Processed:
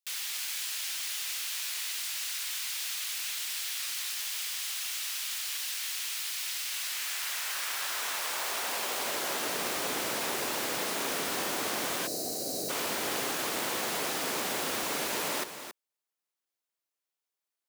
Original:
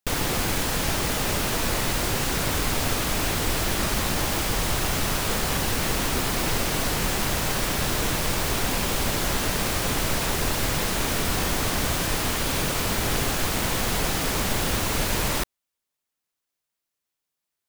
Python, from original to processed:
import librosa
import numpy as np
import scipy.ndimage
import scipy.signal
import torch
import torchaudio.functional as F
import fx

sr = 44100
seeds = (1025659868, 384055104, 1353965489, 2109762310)

y = fx.filter_sweep_highpass(x, sr, from_hz=2700.0, to_hz=330.0, start_s=6.58, end_s=9.62, q=0.87)
y = y + 10.0 ** (-10.0 / 20.0) * np.pad(y, (int(275 * sr / 1000.0), 0))[:len(y)]
y = fx.spec_box(y, sr, start_s=12.07, length_s=0.63, low_hz=780.0, high_hz=3800.0, gain_db=-21)
y = y * 10.0 ** (-6.0 / 20.0)